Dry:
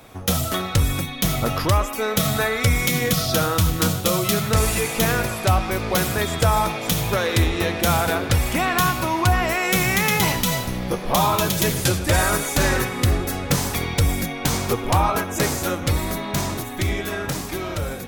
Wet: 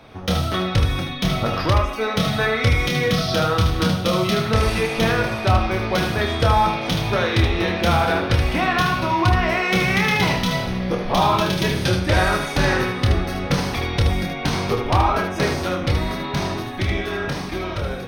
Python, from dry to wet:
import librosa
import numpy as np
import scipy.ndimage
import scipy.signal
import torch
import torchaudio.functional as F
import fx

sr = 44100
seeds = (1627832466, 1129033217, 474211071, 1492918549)

y = scipy.signal.savgol_filter(x, 15, 4, mode='constant')
y = fx.room_early_taps(y, sr, ms=(27, 76), db=(-6.0, -6.5))